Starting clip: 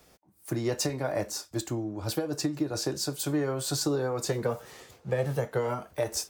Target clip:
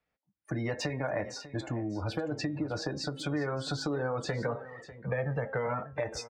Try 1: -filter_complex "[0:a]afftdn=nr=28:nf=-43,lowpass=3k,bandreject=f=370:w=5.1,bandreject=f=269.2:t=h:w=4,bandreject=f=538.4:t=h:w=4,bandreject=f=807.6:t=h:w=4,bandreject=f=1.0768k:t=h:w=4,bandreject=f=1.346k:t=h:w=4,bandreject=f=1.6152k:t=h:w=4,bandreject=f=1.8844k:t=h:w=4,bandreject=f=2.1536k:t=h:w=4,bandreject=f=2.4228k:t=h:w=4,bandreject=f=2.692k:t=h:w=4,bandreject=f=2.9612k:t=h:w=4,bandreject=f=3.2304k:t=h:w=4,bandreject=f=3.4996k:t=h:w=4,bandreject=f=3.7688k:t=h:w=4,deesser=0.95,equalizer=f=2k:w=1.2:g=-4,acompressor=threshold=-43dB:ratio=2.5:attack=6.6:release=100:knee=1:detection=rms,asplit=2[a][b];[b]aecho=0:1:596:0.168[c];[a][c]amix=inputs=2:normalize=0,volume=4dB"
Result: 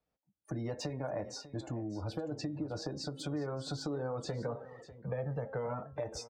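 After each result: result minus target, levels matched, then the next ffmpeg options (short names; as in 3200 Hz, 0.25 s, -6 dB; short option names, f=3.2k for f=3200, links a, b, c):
2000 Hz band -7.5 dB; compressor: peak gain reduction +4 dB
-filter_complex "[0:a]afftdn=nr=28:nf=-43,lowpass=3k,bandreject=f=370:w=5.1,bandreject=f=269.2:t=h:w=4,bandreject=f=538.4:t=h:w=4,bandreject=f=807.6:t=h:w=4,bandreject=f=1.0768k:t=h:w=4,bandreject=f=1.346k:t=h:w=4,bandreject=f=1.6152k:t=h:w=4,bandreject=f=1.8844k:t=h:w=4,bandreject=f=2.1536k:t=h:w=4,bandreject=f=2.4228k:t=h:w=4,bandreject=f=2.692k:t=h:w=4,bandreject=f=2.9612k:t=h:w=4,bandreject=f=3.2304k:t=h:w=4,bandreject=f=3.4996k:t=h:w=4,bandreject=f=3.7688k:t=h:w=4,deesser=0.95,equalizer=f=2k:w=1.2:g=7.5,acompressor=threshold=-43dB:ratio=2.5:attack=6.6:release=100:knee=1:detection=rms,asplit=2[a][b];[b]aecho=0:1:596:0.168[c];[a][c]amix=inputs=2:normalize=0,volume=4dB"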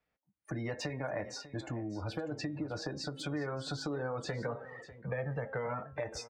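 compressor: peak gain reduction +4.5 dB
-filter_complex "[0:a]afftdn=nr=28:nf=-43,lowpass=3k,bandreject=f=370:w=5.1,bandreject=f=269.2:t=h:w=4,bandreject=f=538.4:t=h:w=4,bandreject=f=807.6:t=h:w=4,bandreject=f=1.0768k:t=h:w=4,bandreject=f=1.346k:t=h:w=4,bandreject=f=1.6152k:t=h:w=4,bandreject=f=1.8844k:t=h:w=4,bandreject=f=2.1536k:t=h:w=4,bandreject=f=2.4228k:t=h:w=4,bandreject=f=2.692k:t=h:w=4,bandreject=f=2.9612k:t=h:w=4,bandreject=f=3.2304k:t=h:w=4,bandreject=f=3.4996k:t=h:w=4,bandreject=f=3.7688k:t=h:w=4,deesser=0.95,equalizer=f=2k:w=1.2:g=7.5,acompressor=threshold=-35.5dB:ratio=2.5:attack=6.6:release=100:knee=1:detection=rms,asplit=2[a][b];[b]aecho=0:1:596:0.168[c];[a][c]amix=inputs=2:normalize=0,volume=4dB"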